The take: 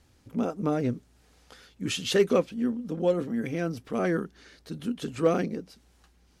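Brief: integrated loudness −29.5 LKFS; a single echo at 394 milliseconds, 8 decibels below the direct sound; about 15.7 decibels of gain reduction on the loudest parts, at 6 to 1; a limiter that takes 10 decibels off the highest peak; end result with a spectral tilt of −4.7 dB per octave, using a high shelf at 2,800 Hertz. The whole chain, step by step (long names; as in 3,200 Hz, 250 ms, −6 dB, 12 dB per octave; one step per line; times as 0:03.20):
high-shelf EQ 2,800 Hz +8.5 dB
downward compressor 6 to 1, threshold −35 dBFS
brickwall limiter −33.5 dBFS
single-tap delay 394 ms −8 dB
level +13.5 dB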